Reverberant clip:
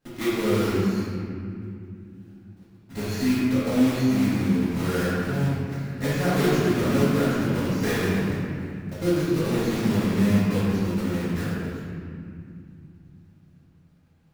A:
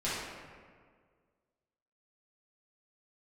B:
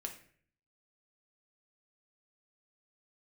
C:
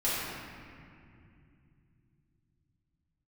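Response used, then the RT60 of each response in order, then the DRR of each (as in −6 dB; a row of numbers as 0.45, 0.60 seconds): C; 1.8, 0.55, 2.5 seconds; −11.5, 2.0, −11.0 decibels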